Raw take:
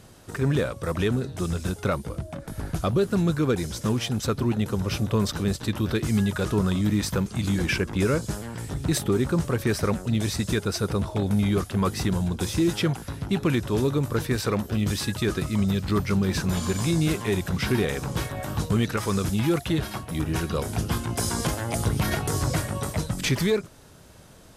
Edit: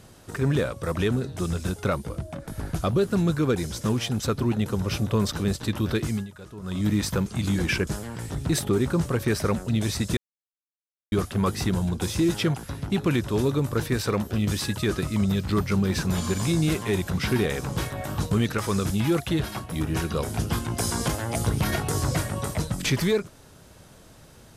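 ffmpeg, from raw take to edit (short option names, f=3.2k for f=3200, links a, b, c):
-filter_complex "[0:a]asplit=6[a][b][c][d][e][f];[a]atrim=end=6.28,asetpts=PTS-STARTPTS,afade=t=out:st=6.02:d=0.26:silence=0.141254[g];[b]atrim=start=6.28:end=6.61,asetpts=PTS-STARTPTS,volume=-17dB[h];[c]atrim=start=6.61:end=7.872,asetpts=PTS-STARTPTS,afade=t=in:d=0.26:silence=0.141254[i];[d]atrim=start=8.258:end=10.56,asetpts=PTS-STARTPTS,afade=t=out:st=2.298:d=0.004:c=hsin[j];[e]atrim=start=10.56:end=11.51,asetpts=PTS-STARTPTS,volume=0[k];[f]atrim=start=11.51,asetpts=PTS-STARTPTS,afade=t=in:d=0.004:c=hsin[l];[g][h][i]concat=n=3:v=0:a=1[m];[j][k][l]concat=n=3:v=0:a=1[n];[m][n]acrossfade=d=0.004:c1=hsin:c2=hsin"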